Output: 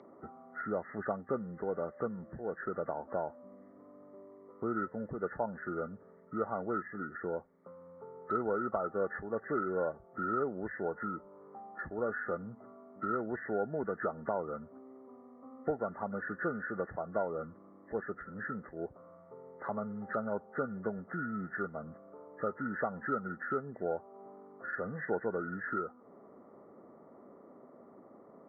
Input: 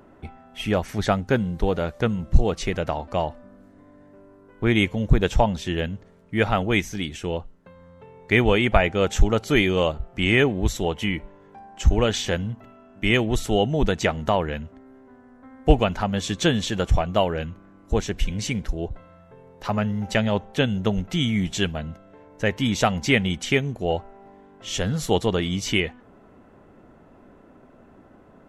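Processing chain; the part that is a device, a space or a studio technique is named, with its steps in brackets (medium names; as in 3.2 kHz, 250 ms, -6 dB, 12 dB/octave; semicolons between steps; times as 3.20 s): hearing aid with frequency lowering (knee-point frequency compression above 1.1 kHz 4:1; compression 2:1, threshold -34 dBFS, peak gain reduction 14.5 dB; cabinet simulation 280–5500 Hz, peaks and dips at 300 Hz -4 dB, 740 Hz -4 dB, 1.1 kHz -7 dB, 1.6 kHz -8 dB, 2.4 kHz -9 dB, 3.8 kHz +7 dB)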